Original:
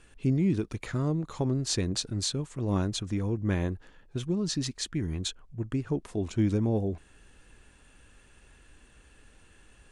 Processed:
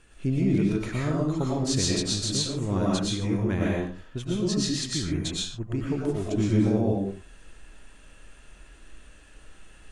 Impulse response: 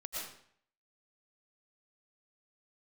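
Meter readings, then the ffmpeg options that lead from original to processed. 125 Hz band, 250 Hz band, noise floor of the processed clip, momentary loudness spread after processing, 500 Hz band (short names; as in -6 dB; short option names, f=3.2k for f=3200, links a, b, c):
+2.5 dB, +4.0 dB, -51 dBFS, 8 LU, +4.5 dB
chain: -filter_complex "[1:a]atrim=start_sample=2205,afade=t=out:st=0.33:d=0.01,atrim=end_sample=14994[a];[0:a][a]afir=irnorm=-1:irlink=0,volume=5dB"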